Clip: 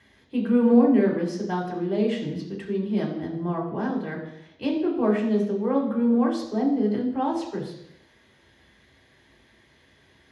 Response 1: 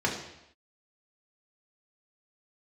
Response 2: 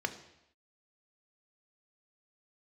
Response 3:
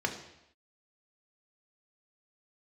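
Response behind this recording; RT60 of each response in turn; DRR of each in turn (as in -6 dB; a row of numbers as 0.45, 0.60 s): 1; not exponential, not exponential, not exponential; -2.5, 7.5, 3.0 dB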